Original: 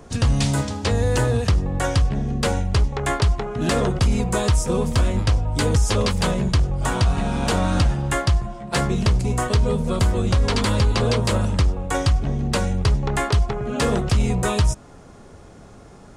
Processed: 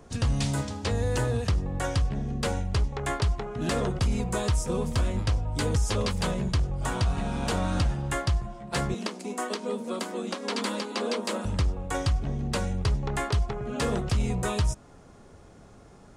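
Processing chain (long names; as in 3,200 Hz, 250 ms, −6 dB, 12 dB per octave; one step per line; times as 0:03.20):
0:08.94–0:11.45: Butterworth high-pass 200 Hz 72 dB per octave
level −7 dB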